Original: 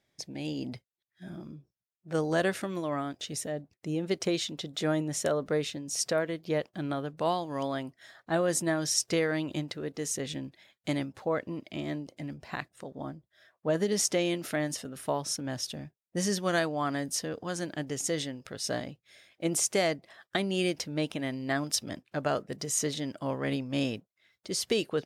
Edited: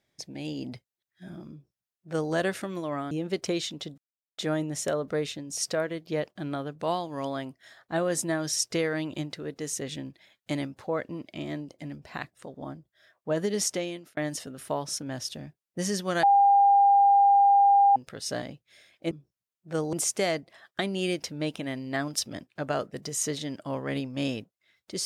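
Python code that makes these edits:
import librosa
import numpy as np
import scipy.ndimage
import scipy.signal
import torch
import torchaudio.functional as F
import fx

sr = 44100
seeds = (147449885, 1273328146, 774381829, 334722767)

y = fx.edit(x, sr, fx.duplicate(start_s=1.51, length_s=0.82, to_s=19.49),
    fx.cut(start_s=3.11, length_s=0.78),
    fx.insert_silence(at_s=4.76, length_s=0.4),
    fx.fade_out_span(start_s=14.01, length_s=0.54),
    fx.bleep(start_s=16.61, length_s=1.73, hz=801.0, db=-15.5), tone=tone)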